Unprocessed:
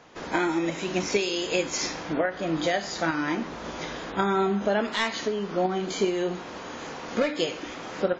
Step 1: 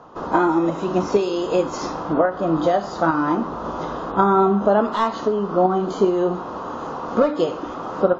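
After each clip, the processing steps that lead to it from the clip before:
low-pass filter 3,300 Hz 6 dB per octave
high shelf with overshoot 1,500 Hz −7.5 dB, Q 3
notch filter 2,300 Hz, Q 8.3
level +7 dB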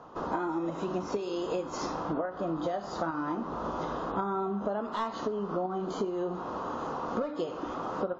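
downward compressor, threshold −24 dBFS, peak gain reduction 12.5 dB
level −5 dB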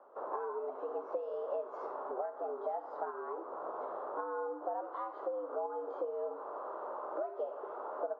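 frequency shifter +100 Hz
dynamic equaliser 980 Hz, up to +5 dB, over −48 dBFS, Q 1.7
four-pole ladder band-pass 630 Hz, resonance 40%
level +2 dB

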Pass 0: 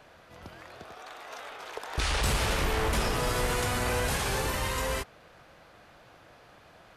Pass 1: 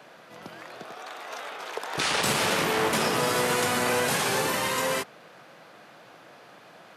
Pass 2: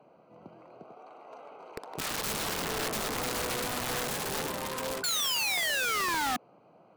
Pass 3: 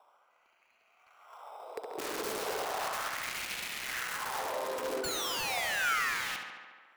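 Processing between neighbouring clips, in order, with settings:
high-pass filter 150 Hz 24 dB per octave; level +5 dB
adaptive Wiener filter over 25 samples; sound drawn into the spectrogram fall, 0:05.03–0:06.37, 240–1,500 Hz −24 dBFS; wrap-around overflow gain 21.5 dB; level −5 dB
auto-filter high-pass sine 0.35 Hz 350–2,500 Hz; in parallel at −7 dB: decimation without filtering 10×; on the sum: tape delay 69 ms, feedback 78%, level −5 dB, low-pass 4,700 Hz; level −7.5 dB

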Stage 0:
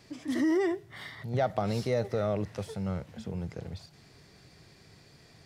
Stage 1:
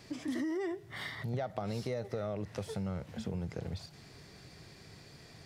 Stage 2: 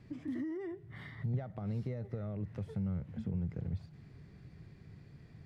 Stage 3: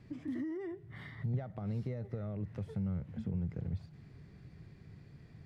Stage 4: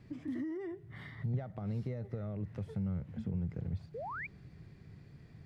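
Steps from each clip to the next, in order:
downward compressor 6 to 1, threshold −36 dBFS, peak gain reduction 12.5 dB; level +2.5 dB
drawn EQ curve 160 Hz 0 dB, 650 Hz −14 dB, 2,000 Hz −12 dB, 5,400 Hz −24 dB; level +3 dB
no processing that can be heard
sound drawn into the spectrogram rise, 0:03.94–0:04.27, 410–2,500 Hz −41 dBFS

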